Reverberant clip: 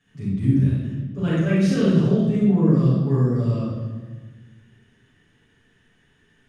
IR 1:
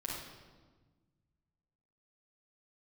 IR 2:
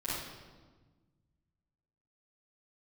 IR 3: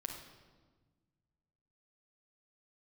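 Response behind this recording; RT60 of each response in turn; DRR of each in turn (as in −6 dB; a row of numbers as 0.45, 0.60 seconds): 2; 1.4, 1.4, 1.4 seconds; −5.0, −12.0, 2.0 decibels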